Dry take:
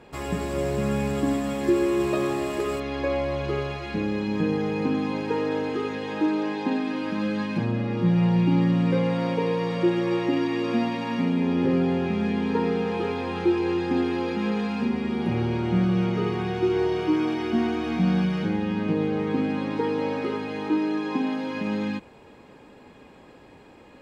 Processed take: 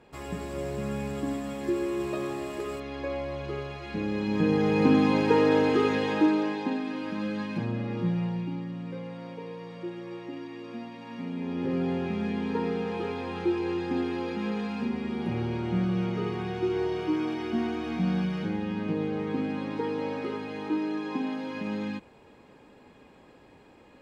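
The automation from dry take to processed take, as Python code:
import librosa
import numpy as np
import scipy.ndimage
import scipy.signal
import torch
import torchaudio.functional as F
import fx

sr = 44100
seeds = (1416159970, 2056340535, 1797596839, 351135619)

y = fx.gain(x, sr, db=fx.line((3.71, -7.0), (4.91, 4.5), (5.99, 4.5), (6.77, -5.0), (7.99, -5.0), (8.64, -15.0), (10.92, -15.0), (11.89, -5.0)))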